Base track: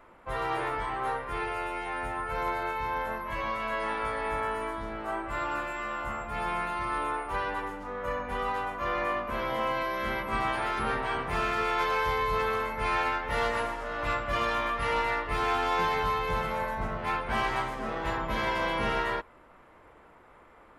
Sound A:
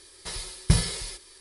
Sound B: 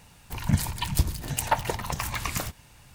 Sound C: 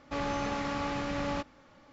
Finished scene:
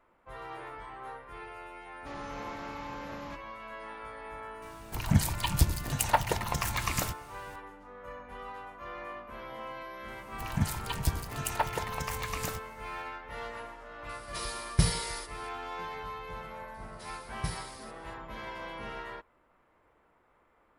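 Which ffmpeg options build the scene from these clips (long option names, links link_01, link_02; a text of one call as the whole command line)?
ffmpeg -i bed.wav -i cue0.wav -i cue1.wav -i cue2.wav -filter_complex "[2:a]asplit=2[link_01][link_02];[1:a]asplit=2[link_03][link_04];[0:a]volume=-12dB[link_05];[3:a]atrim=end=1.92,asetpts=PTS-STARTPTS,volume=-10dB,afade=type=in:duration=0.004:curve=hsin,afade=type=out:start_time=1.916:duration=0.004:curve=hsin,adelay=1940[link_06];[link_01]atrim=end=2.94,asetpts=PTS-STARTPTS,volume=-1dB,afade=type=in:duration=0.004:curve=hsin,afade=type=out:start_time=2.936:duration=0.004:curve=hsin,adelay=4620[link_07];[link_02]atrim=end=2.94,asetpts=PTS-STARTPTS,volume=-6dB,afade=type=in:duration=0.004:curve=hsin,afade=type=out:start_time=2.936:duration=0.004:curve=hsin,adelay=10080[link_08];[link_03]atrim=end=1.4,asetpts=PTS-STARTPTS,volume=-4dB,afade=type=in:duration=0.004:curve=hsin,afade=type=out:start_time=1.396:duration=0.004:curve=hsin,adelay=14090[link_09];[link_04]atrim=end=1.4,asetpts=PTS-STARTPTS,volume=-15dB,afade=type=in:duration=0.004:curve=hsin,afade=type=out:start_time=1.396:duration=0.004:curve=hsin,adelay=16740[link_10];[link_05][link_06][link_07][link_08][link_09][link_10]amix=inputs=6:normalize=0" out.wav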